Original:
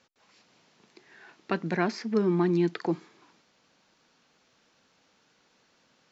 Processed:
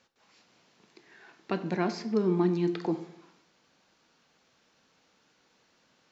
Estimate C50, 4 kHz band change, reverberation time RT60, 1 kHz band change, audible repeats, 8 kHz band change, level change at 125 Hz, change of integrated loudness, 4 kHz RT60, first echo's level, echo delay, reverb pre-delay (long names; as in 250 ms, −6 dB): 12.5 dB, −1.5 dB, 0.80 s, −2.5 dB, no echo audible, can't be measured, −1.5 dB, −1.5 dB, 0.55 s, no echo audible, no echo audible, 16 ms